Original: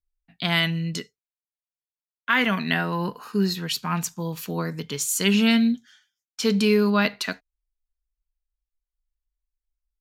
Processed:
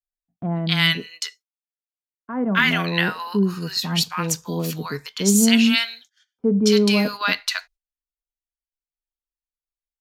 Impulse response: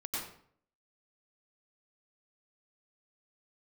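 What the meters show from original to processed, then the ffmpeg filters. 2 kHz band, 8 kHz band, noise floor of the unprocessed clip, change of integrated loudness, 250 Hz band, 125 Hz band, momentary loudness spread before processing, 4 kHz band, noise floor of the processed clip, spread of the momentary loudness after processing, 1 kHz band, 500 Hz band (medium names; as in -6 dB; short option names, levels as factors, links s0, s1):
+3.5 dB, +5.0 dB, under -85 dBFS, +3.0 dB, +3.0 dB, +3.0 dB, 12 LU, +5.0 dB, under -85 dBFS, 14 LU, +1.0 dB, +2.5 dB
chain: -filter_complex "[0:a]equalizer=f=5000:t=o:w=1.2:g=4,acrossover=split=840[s0][s1];[s1]adelay=270[s2];[s0][s2]amix=inputs=2:normalize=0,agate=range=0.0891:threshold=0.00316:ratio=16:detection=peak,volume=1.41"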